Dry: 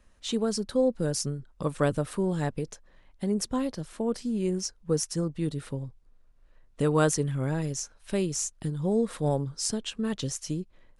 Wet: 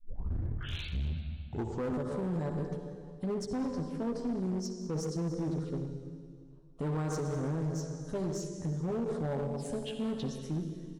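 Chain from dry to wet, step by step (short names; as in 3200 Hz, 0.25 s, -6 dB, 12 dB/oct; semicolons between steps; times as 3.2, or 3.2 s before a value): tape start at the beginning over 2.10 s; bell 9800 Hz -11.5 dB 2.6 oct; doubler 12 ms -5 dB; envelope phaser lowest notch 280 Hz, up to 2600 Hz, full sweep at -27.5 dBFS; reverb RT60 2.0 s, pre-delay 53 ms, DRR 4.5 dB; limiter -21 dBFS, peak gain reduction 11 dB; one-sided clip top -29.5 dBFS, bottom -24 dBFS; gain -3 dB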